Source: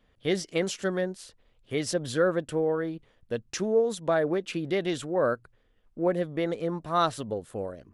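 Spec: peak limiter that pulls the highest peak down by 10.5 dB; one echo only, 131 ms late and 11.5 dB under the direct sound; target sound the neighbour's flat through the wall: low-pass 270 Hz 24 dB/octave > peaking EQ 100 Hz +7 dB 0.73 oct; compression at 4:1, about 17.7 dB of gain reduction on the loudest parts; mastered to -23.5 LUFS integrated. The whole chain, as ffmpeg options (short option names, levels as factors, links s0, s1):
-af "acompressor=threshold=0.00891:ratio=4,alimiter=level_in=4.22:limit=0.0631:level=0:latency=1,volume=0.237,lowpass=f=270:w=0.5412,lowpass=f=270:w=1.3066,equalizer=f=100:t=o:w=0.73:g=7,aecho=1:1:131:0.266,volume=26.6"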